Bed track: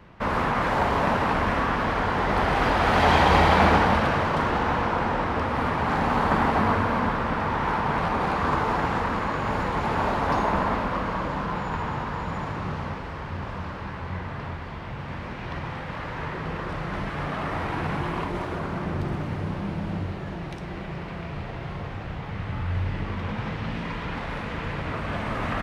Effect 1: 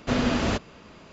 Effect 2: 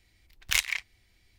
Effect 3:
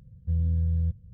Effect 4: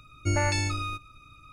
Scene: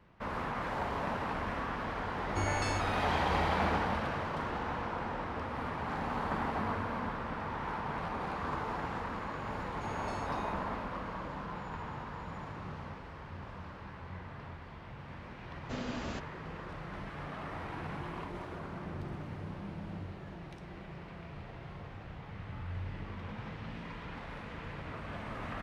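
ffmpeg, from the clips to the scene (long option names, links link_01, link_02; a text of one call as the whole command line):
ffmpeg -i bed.wav -i cue0.wav -i cue1.wav -i cue2.wav -i cue3.wav -filter_complex "[4:a]asplit=2[link_01][link_02];[0:a]volume=-12.5dB[link_03];[link_02]acompressor=threshold=-29dB:ratio=6:attack=3.2:release=140:knee=1:detection=peak[link_04];[link_01]atrim=end=1.52,asetpts=PTS-STARTPTS,volume=-9.5dB,afade=type=in:duration=0.004:curve=hsin,afade=type=out:start_time=1.516:duration=0.004:curve=hsin,adelay=2100[link_05];[link_04]atrim=end=1.52,asetpts=PTS-STARTPTS,volume=-16dB,afade=type=in:duration=0.004:curve=hsin,afade=type=out:start_time=1.516:duration=0.004:curve=hsin,adelay=9560[link_06];[1:a]atrim=end=1.12,asetpts=PTS-STARTPTS,volume=-15dB,afade=type=in:duration=0.004:curve=hsin,afade=type=out:start_time=1.116:duration=0.004:curve=hsin,adelay=15620[link_07];[link_03][link_05][link_06][link_07]amix=inputs=4:normalize=0" out.wav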